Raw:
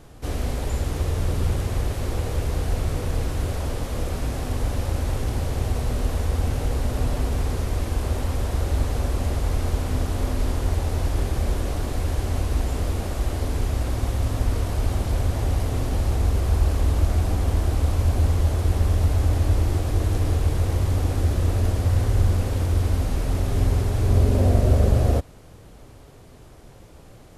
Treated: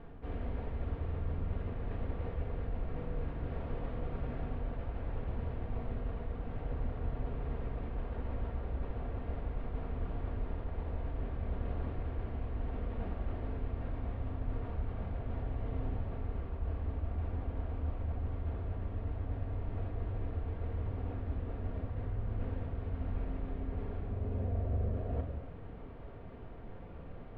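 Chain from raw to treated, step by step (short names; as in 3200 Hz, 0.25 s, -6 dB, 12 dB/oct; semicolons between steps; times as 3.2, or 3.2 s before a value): Bessel low-pass 1900 Hz, order 6; reverse; compressor 4:1, threshold -34 dBFS, peak gain reduction 18.5 dB; reverse; reverb, pre-delay 4 ms, DRR 2 dB; gain -3.5 dB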